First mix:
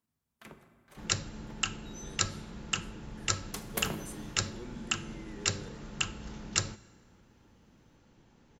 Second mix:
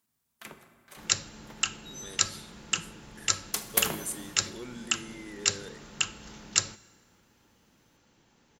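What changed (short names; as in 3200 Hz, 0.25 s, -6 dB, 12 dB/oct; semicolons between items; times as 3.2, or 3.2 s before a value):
speech +7.0 dB; first sound +5.0 dB; master: add tilt +2 dB/oct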